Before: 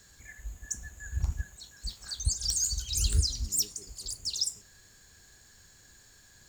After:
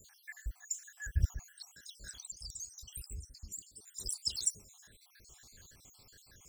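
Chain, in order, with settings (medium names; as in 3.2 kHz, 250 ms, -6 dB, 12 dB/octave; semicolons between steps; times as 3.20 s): random holes in the spectrogram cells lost 66%; treble shelf 9.5 kHz +4.5 dB; 1.73–3.87 s: compression 5:1, threshold -46 dBFS, peak gain reduction 23 dB; trim +1.5 dB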